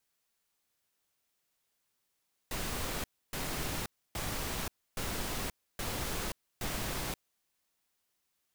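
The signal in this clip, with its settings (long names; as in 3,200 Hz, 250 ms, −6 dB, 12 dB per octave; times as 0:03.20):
noise bursts pink, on 0.53 s, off 0.29 s, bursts 6, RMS −36 dBFS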